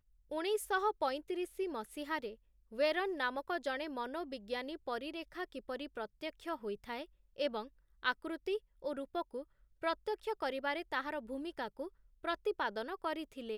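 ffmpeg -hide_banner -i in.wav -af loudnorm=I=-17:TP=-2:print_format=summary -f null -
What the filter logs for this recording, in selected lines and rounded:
Input Integrated:    -39.2 LUFS
Input True Peak:     -18.6 dBTP
Input LRA:             4.5 LU
Input Threshold:     -49.4 LUFS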